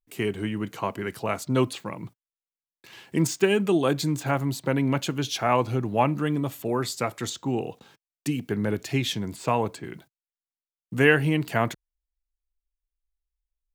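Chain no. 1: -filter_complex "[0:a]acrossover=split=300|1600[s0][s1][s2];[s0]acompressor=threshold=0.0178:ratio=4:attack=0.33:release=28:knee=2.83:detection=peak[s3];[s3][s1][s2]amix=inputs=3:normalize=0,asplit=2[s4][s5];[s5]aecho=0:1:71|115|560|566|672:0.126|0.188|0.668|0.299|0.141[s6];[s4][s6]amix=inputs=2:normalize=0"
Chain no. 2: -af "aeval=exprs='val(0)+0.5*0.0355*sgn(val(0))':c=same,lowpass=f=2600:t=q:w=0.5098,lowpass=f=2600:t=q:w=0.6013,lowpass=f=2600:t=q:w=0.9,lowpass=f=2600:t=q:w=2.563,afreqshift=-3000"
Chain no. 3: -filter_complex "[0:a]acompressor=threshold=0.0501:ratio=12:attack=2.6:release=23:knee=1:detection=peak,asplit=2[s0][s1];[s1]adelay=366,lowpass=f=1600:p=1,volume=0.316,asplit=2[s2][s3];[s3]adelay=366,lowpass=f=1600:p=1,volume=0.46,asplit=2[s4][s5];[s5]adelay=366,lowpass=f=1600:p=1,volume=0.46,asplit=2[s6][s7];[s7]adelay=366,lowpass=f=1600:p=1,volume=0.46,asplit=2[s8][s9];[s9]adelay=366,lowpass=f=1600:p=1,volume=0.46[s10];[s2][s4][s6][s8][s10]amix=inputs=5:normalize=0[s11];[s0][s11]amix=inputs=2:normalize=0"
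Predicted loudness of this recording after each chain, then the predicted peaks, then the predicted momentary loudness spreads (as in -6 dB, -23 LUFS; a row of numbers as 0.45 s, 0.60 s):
-26.5 LUFS, -22.0 LUFS, -31.0 LUFS; -6.5 dBFS, -6.0 dBFS, -14.0 dBFS; 11 LU, 15 LU, 16 LU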